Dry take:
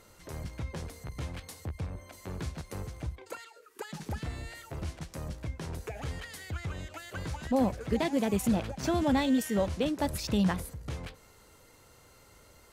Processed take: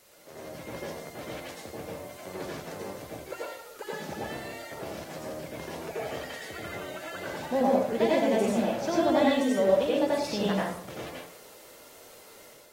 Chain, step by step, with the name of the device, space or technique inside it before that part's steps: filmed off a television (band-pass 230–7100 Hz; peaking EQ 590 Hz +7.5 dB 0.41 oct; reverberation RT60 0.60 s, pre-delay 78 ms, DRR -5 dB; white noise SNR 24 dB; level rider gain up to 6 dB; trim -8.5 dB; AAC 48 kbps 44.1 kHz)

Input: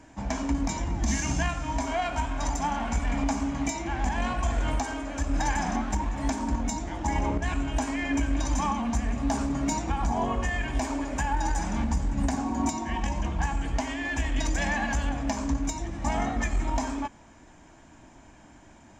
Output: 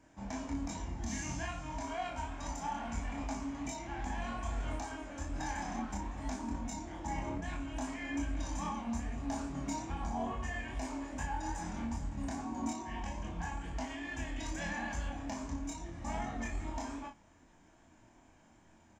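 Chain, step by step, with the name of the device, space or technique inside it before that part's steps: double-tracked vocal (doubling 35 ms -5.5 dB; chorus 2.4 Hz, depth 3.4 ms); trim -8.5 dB

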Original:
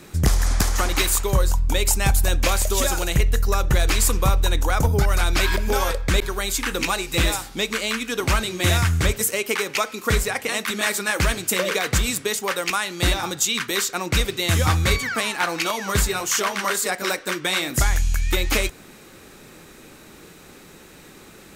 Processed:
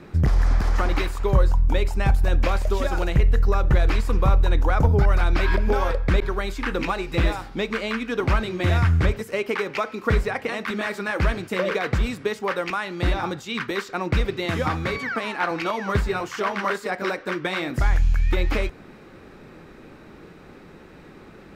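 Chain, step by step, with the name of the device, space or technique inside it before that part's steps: 14.45–15.51 s: high-pass 170 Hz 12 dB/octave; over-bright horn tweeter (resonant high shelf 4.5 kHz +6.5 dB, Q 1.5; peak limiter -10 dBFS, peak gain reduction 8.5 dB); distance through air 410 m; trim +2.5 dB

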